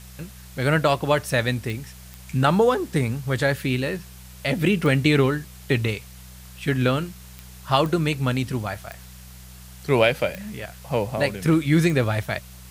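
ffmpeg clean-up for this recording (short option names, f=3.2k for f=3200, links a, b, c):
-af "adeclick=t=4,bandreject=f=62.5:t=h:w=4,bandreject=f=125:t=h:w=4,bandreject=f=187.5:t=h:w=4,afwtdn=0.0045"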